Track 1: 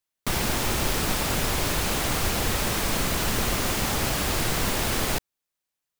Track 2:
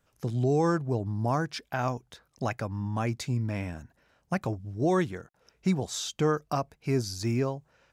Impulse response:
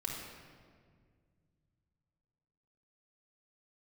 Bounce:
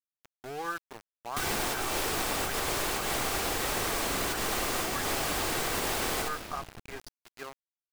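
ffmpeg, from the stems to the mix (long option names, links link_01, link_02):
-filter_complex "[0:a]adelay=1100,volume=0.5dB,asplit=2[link_01][link_02];[link_02]volume=-7.5dB[link_03];[1:a]bandpass=frequency=1500:width_type=q:width=1.9:csg=0,aecho=1:1:2.5:0.33,volume=1dB,asplit=2[link_04][link_05];[link_05]apad=whole_len=313106[link_06];[link_01][link_06]sidechaincompress=threshold=-39dB:ratio=8:attack=8.6:release=137[link_07];[2:a]atrim=start_sample=2205[link_08];[link_03][link_08]afir=irnorm=-1:irlink=0[link_09];[link_07][link_04][link_09]amix=inputs=3:normalize=0,equalizer=frequency=8100:width=7.8:gain=2.5,acrossover=split=300|1800[link_10][link_11][link_12];[link_10]acompressor=threshold=-41dB:ratio=4[link_13];[link_11]acompressor=threshold=-32dB:ratio=4[link_14];[link_12]acompressor=threshold=-33dB:ratio=4[link_15];[link_13][link_14][link_15]amix=inputs=3:normalize=0,aeval=exprs='val(0)*gte(abs(val(0)),0.0119)':channel_layout=same"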